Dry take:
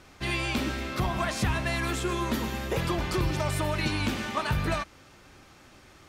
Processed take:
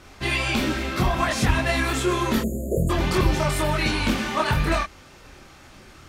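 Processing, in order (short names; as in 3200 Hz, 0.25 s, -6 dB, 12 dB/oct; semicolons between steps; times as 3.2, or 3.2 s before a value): spectral delete 2.41–2.9, 730–6600 Hz; chorus voices 6, 1.3 Hz, delay 25 ms, depth 3 ms; gain +9 dB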